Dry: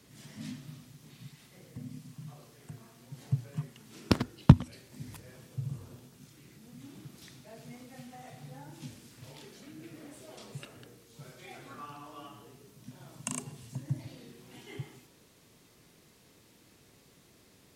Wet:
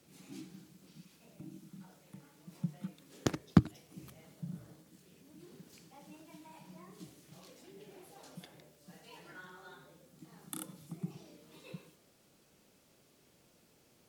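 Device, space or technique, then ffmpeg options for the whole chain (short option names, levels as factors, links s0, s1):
nightcore: -af "asetrate=55566,aresample=44100,volume=0.501"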